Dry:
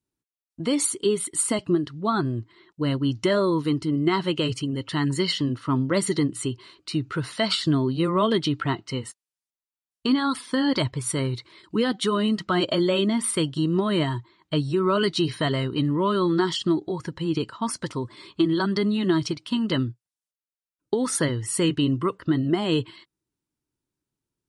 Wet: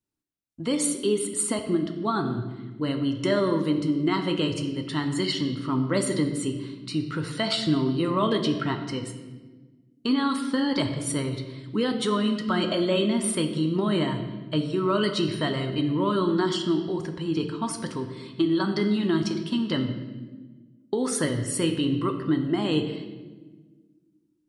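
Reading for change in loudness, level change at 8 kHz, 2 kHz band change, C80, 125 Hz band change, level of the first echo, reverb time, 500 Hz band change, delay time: -1.5 dB, -2.0 dB, -2.0 dB, 9.5 dB, -2.5 dB, none, 1.3 s, -1.5 dB, none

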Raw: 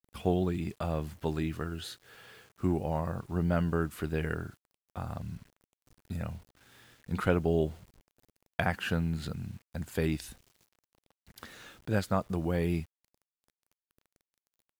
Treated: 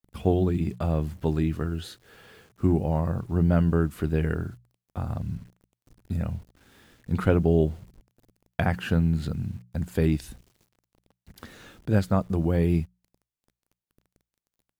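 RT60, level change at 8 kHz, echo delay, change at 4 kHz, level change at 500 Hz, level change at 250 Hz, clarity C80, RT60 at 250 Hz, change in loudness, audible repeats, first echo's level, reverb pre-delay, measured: none, n/a, none, 0.0 dB, +5.0 dB, +7.0 dB, none, none, +6.5 dB, none, none, none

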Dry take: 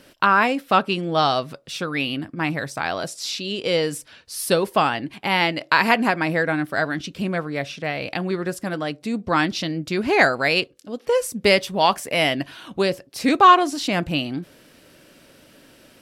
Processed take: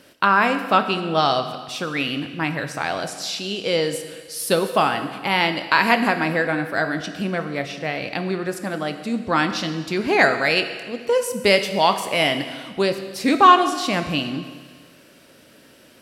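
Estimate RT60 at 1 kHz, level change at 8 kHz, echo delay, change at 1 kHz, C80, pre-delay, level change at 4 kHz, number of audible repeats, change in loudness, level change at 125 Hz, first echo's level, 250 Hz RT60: 1.6 s, +0.5 dB, none, +0.5 dB, 11.0 dB, 21 ms, +1.0 dB, none, +0.5 dB, -0.5 dB, none, 1.6 s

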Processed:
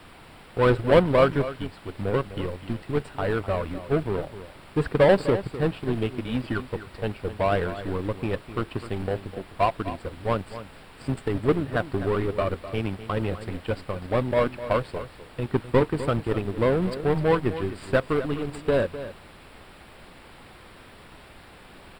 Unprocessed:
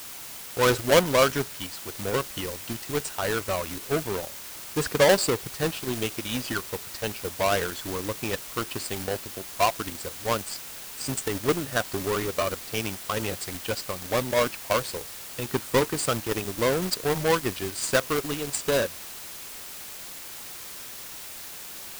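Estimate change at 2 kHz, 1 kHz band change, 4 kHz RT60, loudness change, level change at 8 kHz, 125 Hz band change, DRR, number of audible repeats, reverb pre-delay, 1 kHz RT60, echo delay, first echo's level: -3.0 dB, 0.0 dB, none, +1.5 dB, under -20 dB, +6.0 dB, none, 1, none, none, 0.254 s, -13.0 dB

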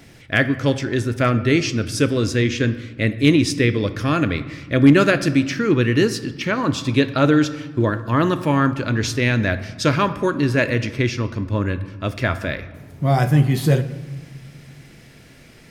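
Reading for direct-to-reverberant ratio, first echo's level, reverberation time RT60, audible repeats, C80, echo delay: 11.5 dB, none, 1.5 s, none, 15.5 dB, none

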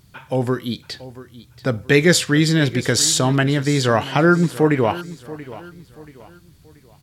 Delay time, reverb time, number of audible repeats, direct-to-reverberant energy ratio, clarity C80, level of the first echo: 0.682 s, none, 3, none, none, -17.0 dB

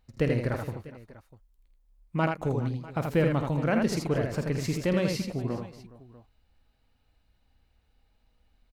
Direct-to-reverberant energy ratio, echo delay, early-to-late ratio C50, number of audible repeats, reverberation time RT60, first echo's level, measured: none, 50 ms, none, 5, none, -11.5 dB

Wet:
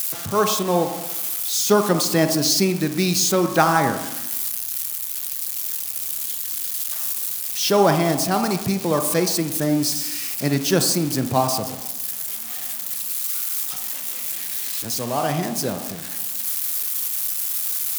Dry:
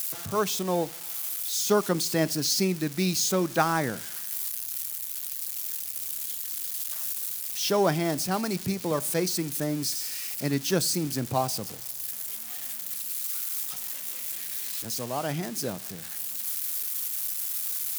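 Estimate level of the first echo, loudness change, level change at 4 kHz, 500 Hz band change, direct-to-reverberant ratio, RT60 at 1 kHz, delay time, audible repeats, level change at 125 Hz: none, +7.0 dB, +6.5 dB, +7.0 dB, 6.5 dB, 0.90 s, none, none, +6.5 dB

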